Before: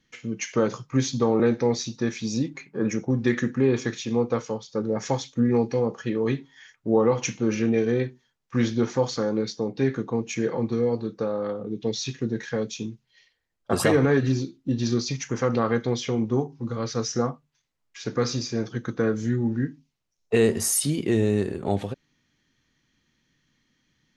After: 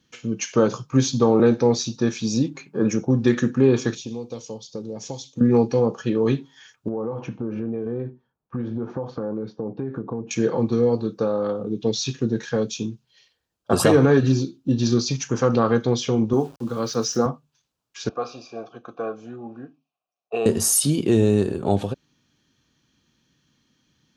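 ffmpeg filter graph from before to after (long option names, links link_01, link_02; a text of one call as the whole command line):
ffmpeg -i in.wav -filter_complex "[0:a]asettb=1/sr,asplit=3[link_01][link_02][link_03];[link_01]atrim=end=3.954[link_04];[link_02]atrim=start=3.95:end=5.41,asetpts=PTS-STARTPTS,afade=type=in:duration=0.004:curve=qsin,afade=type=out:start_time=1.456:duration=0.004:curve=qsin,equalizer=frequency=1400:width_type=o:width=0.77:gain=-14,acrossover=split=1100|2900[link_05][link_06][link_07];[link_05]acompressor=threshold=-36dB:ratio=4[link_08];[link_06]acompressor=threshold=-60dB:ratio=4[link_09];[link_07]acompressor=threshold=-41dB:ratio=4[link_10];[link_08][link_09][link_10]amix=inputs=3:normalize=0[link_11];[link_03]atrim=start=5.406[link_12];[link_04][link_11]acrossfade=duration=0.004:curve1=hsin:curve2=qsin[link_13];[link_13][link_12]acrossfade=duration=0.004:curve1=qsin:curve2=hsin,asettb=1/sr,asplit=3[link_14][link_15][link_16];[link_14]atrim=end=6.884[link_17];[link_15]atrim=start=6.88:end=10.31,asetpts=PTS-STARTPTS,afade=type=in:duration=0.004:curve=qsin,afade=type=out:start_time=3.426:duration=0.004:curve=qsin,lowpass=1200,acompressor=threshold=-28dB:ratio=8:attack=3.2:release=140:knee=1:detection=peak[link_18];[link_16]atrim=start=10.306[link_19];[link_17][link_18]acrossfade=duration=0.004:curve1=hsin:curve2=qsin[link_20];[link_20][link_19]acrossfade=duration=0.004:curve1=qsin:curve2=hsin,asettb=1/sr,asplit=3[link_21][link_22][link_23];[link_21]atrim=end=16.334[link_24];[link_22]atrim=start=16.33:end=17.26,asetpts=PTS-STARTPTS,afade=type=in:duration=0.004:curve=qsin,afade=type=out:start_time=0.926:duration=0.004:curve=qsin,highpass=160,aeval=exprs='val(0)*gte(abs(val(0)),0.00447)':channel_layout=same[link_25];[link_23]atrim=start=17.256[link_26];[link_24][link_25]acrossfade=duration=0.004:curve1=hsin:curve2=qsin[link_27];[link_27][link_26]acrossfade=duration=0.004:curve1=qsin:curve2=hsin,asettb=1/sr,asplit=3[link_28][link_29][link_30];[link_28]atrim=end=18.094[link_31];[link_29]atrim=start=18.09:end=20.46,asetpts=PTS-STARTPTS,afade=type=in:duration=0.004:curve=qsin,afade=type=out:start_time=2.366:duration=0.004:curve=qsin,asplit=3[link_32][link_33][link_34];[link_32]bandpass=frequency=730:width_type=q:width=8,volume=0dB[link_35];[link_33]bandpass=frequency=1090:width_type=q:width=8,volume=-6dB[link_36];[link_34]bandpass=frequency=2440:width_type=q:width=8,volume=-9dB[link_37];[link_35][link_36][link_37]amix=inputs=3:normalize=0,acontrast=66[link_38];[link_30]atrim=start=20.456[link_39];[link_31][link_38]acrossfade=duration=0.004:curve1=hsin:curve2=qsin[link_40];[link_40][link_39]acrossfade=duration=0.004:curve1=qsin:curve2=hsin,highpass=51,equalizer=frequency=2000:width_type=o:width=0.3:gain=-12.5,volume=4.5dB" out.wav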